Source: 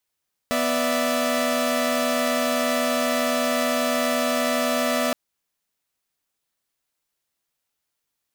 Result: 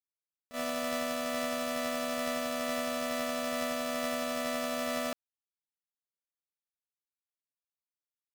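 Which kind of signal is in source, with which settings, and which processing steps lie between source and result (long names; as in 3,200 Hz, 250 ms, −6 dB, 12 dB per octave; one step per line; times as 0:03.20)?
held notes B3/D5/E5 saw, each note −22.5 dBFS 4.62 s
noise gate −20 dBFS, range −28 dB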